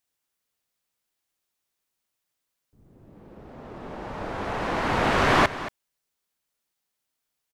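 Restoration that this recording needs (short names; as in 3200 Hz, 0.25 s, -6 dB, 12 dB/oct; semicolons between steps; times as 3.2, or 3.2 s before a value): inverse comb 0.227 s -14.5 dB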